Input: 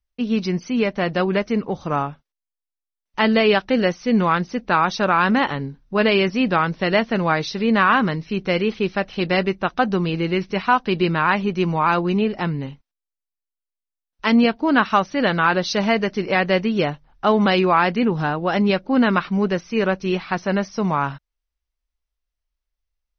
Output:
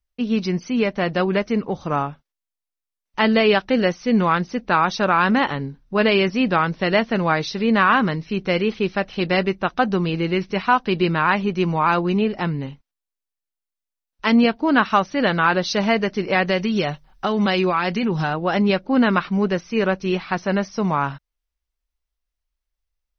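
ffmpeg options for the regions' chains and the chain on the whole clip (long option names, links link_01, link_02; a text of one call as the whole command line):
ffmpeg -i in.wav -filter_complex "[0:a]asettb=1/sr,asplit=3[link_01][link_02][link_03];[link_01]atrim=end=16.474[link_04];[link_02]atrim=start=16.47:end=18.34,asetpts=PTS-STARTPTS,afade=type=in:duration=0.004:curve=qsin,afade=type=out:start_time=1.866:duration=0.004:curve=qsin,highshelf=frequency=4000:gain=11,acompressor=threshold=-19dB:ratio=2.5:attack=3.2:release=140:knee=1:detection=peak,aecho=1:1:5.3:0.37,atrim=end_sample=82467[link_05];[link_03]atrim=start=18.336[link_06];[link_04][link_05]acrossfade=duration=0.004:curve1=hsin:curve2=qsin[link_07];[link_07][link_06]acrossfade=duration=0.004:curve1=qsin:curve2=hsin" out.wav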